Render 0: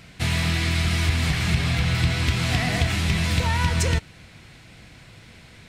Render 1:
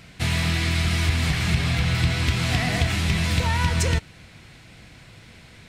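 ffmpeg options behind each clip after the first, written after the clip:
-af anull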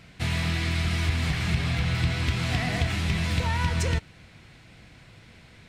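-af "highshelf=f=5.4k:g=-5.5,volume=-3.5dB"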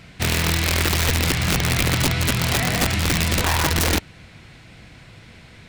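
-af "aeval=exprs='(mod(9.44*val(0)+1,2)-1)/9.44':c=same,volume=6dB"

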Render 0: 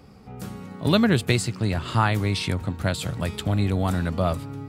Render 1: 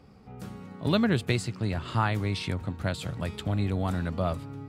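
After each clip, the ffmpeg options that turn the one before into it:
-af "highshelf=f=6.8k:g=-7.5,volume=-5dB"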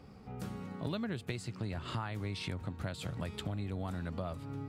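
-af "acompressor=threshold=-35dB:ratio=6"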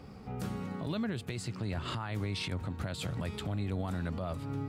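-af "alimiter=level_in=7.5dB:limit=-24dB:level=0:latency=1:release=28,volume=-7.5dB,volume=5dB"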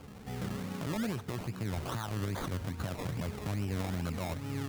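-af "acrusher=samples=23:mix=1:aa=0.000001:lfo=1:lforange=13.8:lforate=2.4"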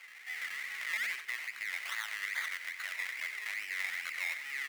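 -af "highpass=f=2k:t=q:w=8.8,aecho=1:1:91:0.282"

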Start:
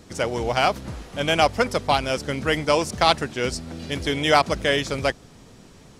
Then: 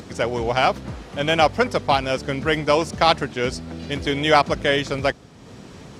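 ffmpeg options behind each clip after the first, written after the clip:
-af "highpass=58,highshelf=f=7.5k:g=-11.5,acompressor=mode=upward:threshold=-34dB:ratio=2.5,volume=2dB"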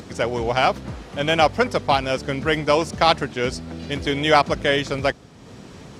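-af anull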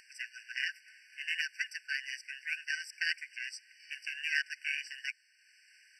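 -af "aeval=exprs='val(0)+0.0708*sin(2*PI*3800*n/s)':c=same,aeval=exprs='val(0)*sin(2*PI*540*n/s)':c=same,afftfilt=real='re*eq(mod(floor(b*sr/1024/1500),2),1)':imag='im*eq(mod(floor(b*sr/1024/1500),2),1)':win_size=1024:overlap=0.75,volume=-6.5dB"

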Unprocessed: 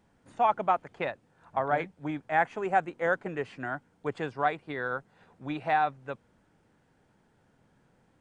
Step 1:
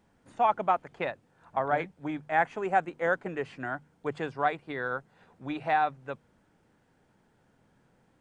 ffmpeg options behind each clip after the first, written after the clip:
-af "bandreject=f=50:t=h:w=6,bandreject=f=100:t=h:w=6,bandreject=f=150:t=h:w=6"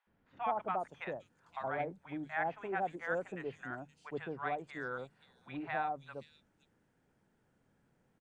-filter_complex "[0:a]acrossover=split=870|4000[a][b][c];[a]adelay=70[d];[c]adelay=520[e];[d][b][e]amix=inputs=3:normalize=0,volume=-7dB"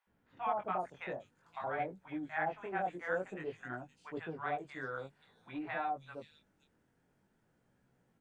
-af "flanger=delay=16:depth=6.5:speed=0.51,volume=2.5dB"

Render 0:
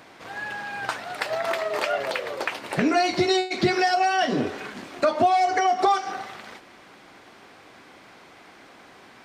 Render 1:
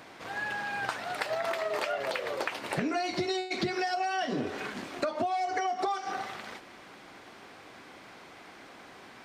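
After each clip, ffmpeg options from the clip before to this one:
-af "acompressor=threshold=-27dB:ratio=6,volume=-1dB"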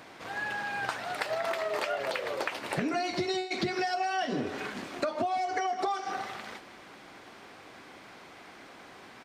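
-af "aecho=1:1:157:0.141"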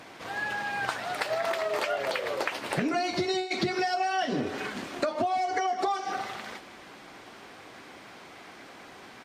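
-af "volume=2.5dB" -ar 48000 -c:a libvorbis -b:a 48k

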